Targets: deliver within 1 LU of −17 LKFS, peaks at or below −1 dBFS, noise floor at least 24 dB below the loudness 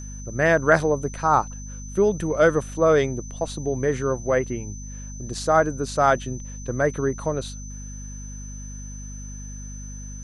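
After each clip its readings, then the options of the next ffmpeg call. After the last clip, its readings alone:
mains hum 50 Hz; hum harmonics up to 250 Hz; level of the hum −34 dBFS; interfering tone 6,100 Hz; level of the tone −41 dBFS; integrated loudness −22.5 LKFS; sample peak −4.5 dBFS; target loudness −17.0 LKFS
→ -af "bandreject=frequency=50:width_type=h:width=4,bandreject=frequency=100:width_type=h:width=4,bandreject=frequency=150:width_type=h:width=4,bandreject=frequency=200:width_type=h:width=4,bandreject=frequency=250:width_type=h:width=4"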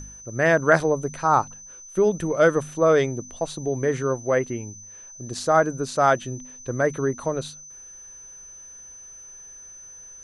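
mains hum none found; interfering tone 6,100 Hz; level of the tone −41 dBFS
→ -af "bandreject=frequency=6100:width=30"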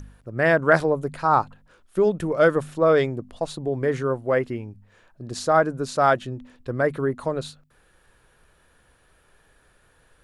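interfering tone none found; integrated loudness −22.5 LKFS; sample peak −4.5 dBFS; target loudness −17.0 LKFS
→ -af "volume=5.5dB,alimiter=limit=-1dB:level=0:latency=1"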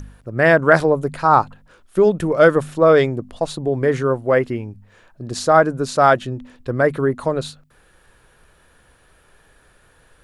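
integrated loudness −17.5 LKFS; sample peak −1.0 dBFS; background noise floor −55 dBFS

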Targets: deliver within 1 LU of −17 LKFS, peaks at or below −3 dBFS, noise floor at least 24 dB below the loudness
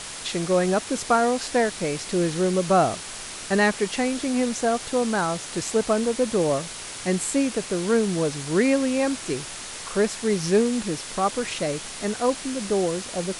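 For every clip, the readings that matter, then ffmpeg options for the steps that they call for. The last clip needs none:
background noise floor −36 dBFS; target noise floor −48 dBFS; integrated loudness −24.0 LKFS; sample peak −8.5 dBFS; target loudness −17.0 LKFS
→ -af "afftdn=noise_reduction=12:noise_floor=-36"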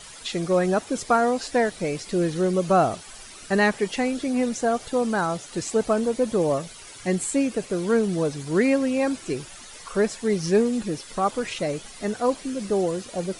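background noise floor −43 dBFS; target noise floor −49 dBFS
→ -af "afftdn=noise_reduction=6:noise_floor=-43"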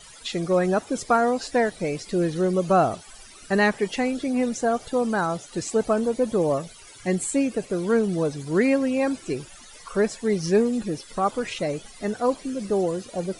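background noise floor −46 dBFS; target noise floor −49 dBFS
→ -af "afftdn=noise_reduction=6:noise_floor=-46"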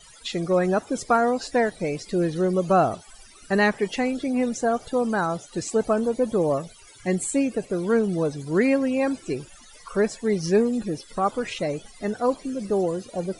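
background noise floor −49 dBFS; integrated loudness −24.5 LKFS; sample peak −8.5 dBFS; target loudness −17.0 LKFS
→ -af "volume=7.5dB,alimiter=limit=-3dB:level=0:latency=1"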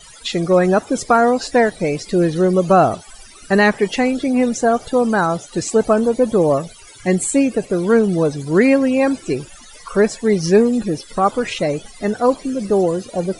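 integrated loudness −17.0 LKFS; sample peak −3.0 dBFS; background noise floor −42 dBFS

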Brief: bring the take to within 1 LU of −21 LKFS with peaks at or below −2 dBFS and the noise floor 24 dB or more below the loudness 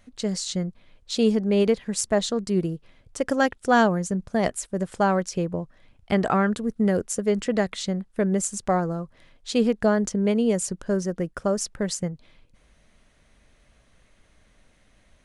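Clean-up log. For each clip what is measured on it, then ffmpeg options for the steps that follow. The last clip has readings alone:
integrated loudness −24.5 LKFS; sample peak −6.5 dBFS; target loudness −21.0 LKFS
→ -af "volume=3.5dB"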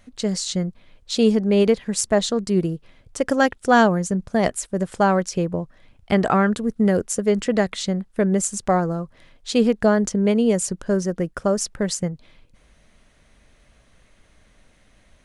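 integrated loudness −21.0 LKFS; sample peak −3.0 dBFS; background noise floor −57 dBFS

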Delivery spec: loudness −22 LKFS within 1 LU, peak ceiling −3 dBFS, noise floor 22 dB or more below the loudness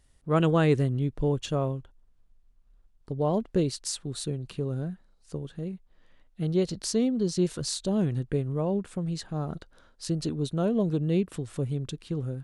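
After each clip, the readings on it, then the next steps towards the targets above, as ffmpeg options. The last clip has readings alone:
integrated loudness −29.0 LKFS; sample peak −11.0 dBFS; target loudness −22.0 LKFS
→ -af "volume=7dB"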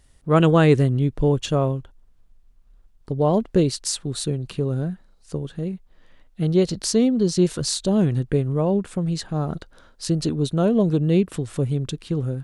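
integrated loudness −22.0 LKFS; sample peak −4.0 dBFS; background noise floor −55 dBFS

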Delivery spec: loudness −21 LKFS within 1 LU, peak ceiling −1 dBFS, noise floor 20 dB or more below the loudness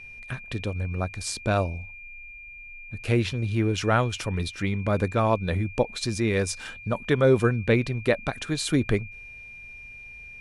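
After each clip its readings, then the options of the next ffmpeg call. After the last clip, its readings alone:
interfering tone 2,400 Hz; level of the tone −41 dBFS; integrated loudness −26.0 LKFS; sample peak −8.0 dBFS; target loudness −21.0 LKFS
→ -af "bandreject=frequency=2400:width=30"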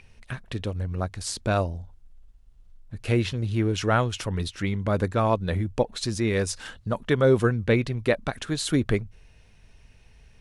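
interfering tone none found; integrated loudness −26.0 LKFS; sample peak −8.5 dBFS; target loudness −21.0 LKFS
→ -af "volume=5dB"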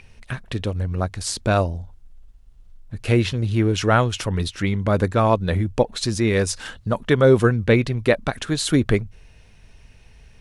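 integrated loudness −21.0 LKFS; sample peak −3.5 dBFS; background noise floor −49 dBFS

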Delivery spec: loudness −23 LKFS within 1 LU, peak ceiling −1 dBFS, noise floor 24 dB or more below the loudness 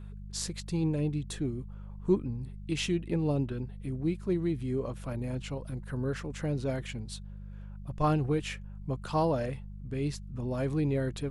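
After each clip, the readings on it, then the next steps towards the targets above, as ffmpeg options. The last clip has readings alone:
mains hum 50 Hz; hum harmonics up to 200 Hz; level of the hum −41 dBFS; integrated loudness −33.0 LKFS; sample peak −14.0 dBFS; target loudness −23.0 LKFS
→ -af "bandreject=frequency=50:width_type=h:width=4,bandreject=frequency=100:width_type=h:width=4,bandreject=frequency=150:width_type=h:width=4,bandreject=frequency=200:width_type=h:width=4"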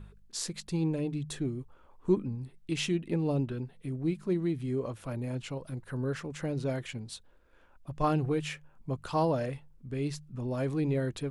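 mains hum none found; integrated loudness −33.0 LKFS; sample peak −14.5 dBFS; target loudness −23.0 LKFS
→ -af "volume=10dB"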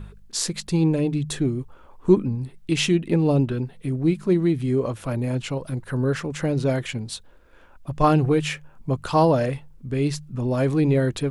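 integrated loudness −23.0 LKFS; sample peak −4.5 dBFS; background noise floor −50 dBFS

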